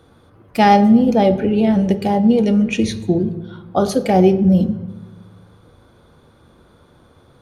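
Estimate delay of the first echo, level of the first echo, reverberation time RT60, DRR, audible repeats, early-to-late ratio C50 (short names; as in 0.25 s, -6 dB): none, none, 1.1 s, 10.0 dB, none, 14.0 dB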